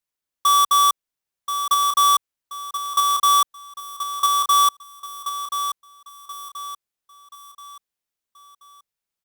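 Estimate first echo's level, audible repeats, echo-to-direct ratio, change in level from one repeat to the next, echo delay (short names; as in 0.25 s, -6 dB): -9.0 dB, 4, -8.5 dB, -8.0 dB, 1.03 s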